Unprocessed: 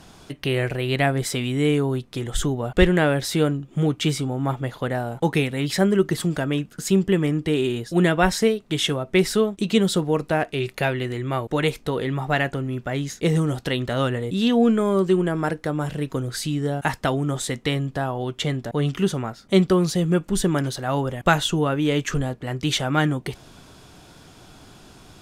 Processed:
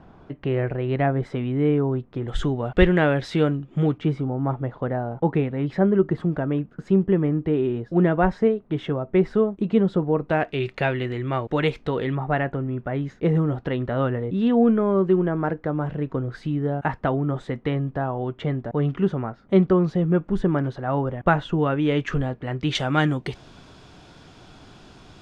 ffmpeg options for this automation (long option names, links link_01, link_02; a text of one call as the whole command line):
ffmpeg -i in.wav -af "asetnsamples=nb_out_samples=441:pad=0,asendcmd='2.28 lowpass f 2900;3.98 lowpass f 1200;10.3 lowpass f 3100;12.15 lowpass f 1500;21.59 lowpass f 2600;22.75 lowpass f 5100',lowpass=1300" out.wav